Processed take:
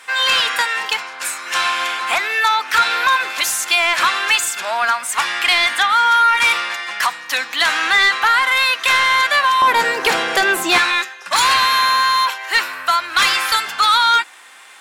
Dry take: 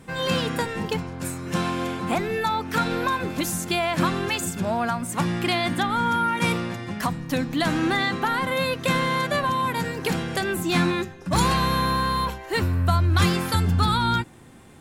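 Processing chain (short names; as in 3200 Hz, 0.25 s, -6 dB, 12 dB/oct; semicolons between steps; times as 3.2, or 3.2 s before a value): HPF 1300 Hz 12 dB/oct, from 9.62 s 490 Hz, from 10.78 s 1300 Hz; overdrive pedal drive 15 dB, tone 4300 Hz, clips at -11 dBFS; gain +7.5 dB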